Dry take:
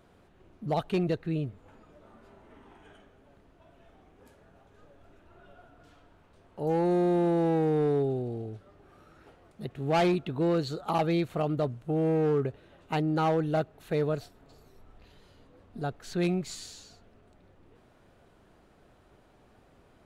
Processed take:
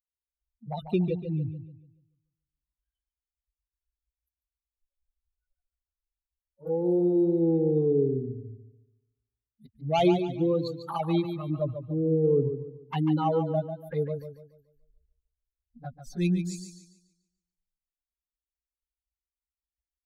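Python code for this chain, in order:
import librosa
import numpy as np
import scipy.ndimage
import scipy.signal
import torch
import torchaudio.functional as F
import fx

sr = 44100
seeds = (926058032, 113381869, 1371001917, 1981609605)

y = fx.bin_expand(x, sr, power=3.0)
y = fx.env_flanger(y, sr, rest_ms=5.9, full_db=-31.5)
y = fx.echo_warbled(y, sr, ms=144, feedback_pct=36, rate_hz=2.8, cents=55, wet_db=-9)
y = F.gain(torch.from_numpy(y), 7.0).numpy()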